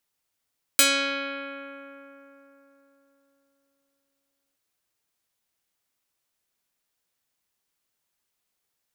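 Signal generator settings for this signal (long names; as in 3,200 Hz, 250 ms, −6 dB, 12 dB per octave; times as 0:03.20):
Karplus-Strong string C#4, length 3.77 s, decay 3.86 s, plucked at 0.3, medium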